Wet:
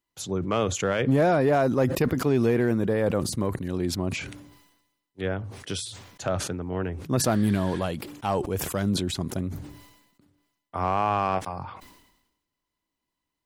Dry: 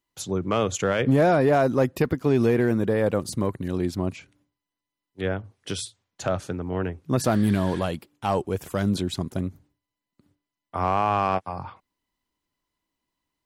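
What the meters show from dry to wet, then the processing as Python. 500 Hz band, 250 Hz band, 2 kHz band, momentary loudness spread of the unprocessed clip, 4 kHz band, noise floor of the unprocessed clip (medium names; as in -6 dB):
-1.5 dB, -1.5 dB, -1.0 dB, 12 LU, +1.5 dB, under -85 dBFS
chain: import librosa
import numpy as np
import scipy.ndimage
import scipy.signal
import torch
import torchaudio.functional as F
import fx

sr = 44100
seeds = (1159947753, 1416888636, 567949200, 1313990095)

y = fx.sustainer(x, sr, db_per_s=59.0)
y = y * librosa.db_to_amplitude(-2.0)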